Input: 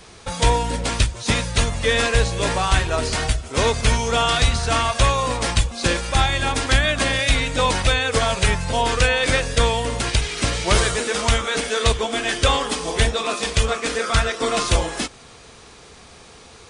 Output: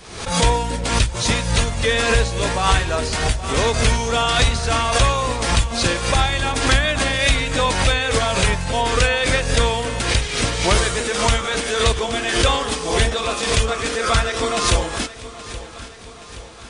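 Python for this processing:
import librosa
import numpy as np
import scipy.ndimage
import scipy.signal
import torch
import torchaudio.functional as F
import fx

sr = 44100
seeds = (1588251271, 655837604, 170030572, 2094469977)

p1 = x + fx.echo_feedback(x, sr, ms=824, feedback_pct=56, wet_db=-15.5, dry=0)
y = fx.pre_swell(p1, sr, db_per_s=71.0)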